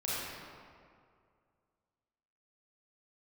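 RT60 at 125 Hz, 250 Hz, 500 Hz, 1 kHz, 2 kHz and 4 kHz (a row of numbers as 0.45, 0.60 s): 2.4, 2.2, 2.3, 2.1, 1.7, 1.3 s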